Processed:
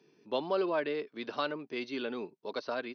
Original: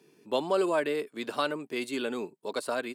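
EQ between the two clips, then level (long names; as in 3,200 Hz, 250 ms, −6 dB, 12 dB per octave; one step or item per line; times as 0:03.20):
linear-phase brick-wall low-pass 6,300 Hz
−4.0 dB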